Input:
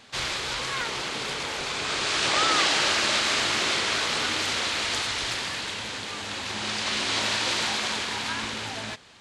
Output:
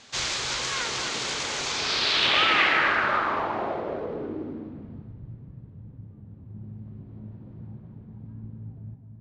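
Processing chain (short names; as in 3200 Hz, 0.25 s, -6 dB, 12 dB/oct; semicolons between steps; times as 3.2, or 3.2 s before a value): echo with dull and thin repeats by turns 0.254 s, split 2300 Hz, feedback 63%, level -6.5 dB; low-pass sweep 6700 Hz -> 140 Hz, 1.66–5.22; gain -1.5 dB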